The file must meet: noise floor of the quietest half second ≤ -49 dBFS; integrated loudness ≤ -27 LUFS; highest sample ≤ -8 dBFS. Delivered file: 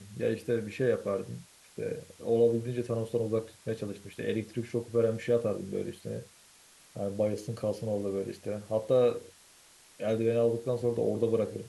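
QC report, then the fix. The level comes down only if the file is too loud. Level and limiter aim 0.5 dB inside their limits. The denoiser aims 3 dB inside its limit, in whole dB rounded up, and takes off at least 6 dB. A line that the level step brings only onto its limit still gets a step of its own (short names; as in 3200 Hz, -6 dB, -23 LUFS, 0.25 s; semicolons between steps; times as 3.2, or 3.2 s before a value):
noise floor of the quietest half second -58 dBFS: OK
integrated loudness -31.5 LUFS: OK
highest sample -15.0 dBFS: OK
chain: none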